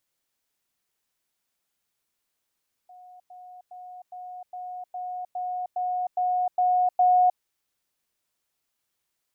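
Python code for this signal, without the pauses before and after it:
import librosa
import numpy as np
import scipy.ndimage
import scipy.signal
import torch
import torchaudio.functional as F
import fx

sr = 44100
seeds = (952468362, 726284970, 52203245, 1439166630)

y = fx.level_ladder(sr, hz=727.0, from_db=-45.5, step_db=3.0, steps=11, dwell_s=0.31, gap_s=0.1)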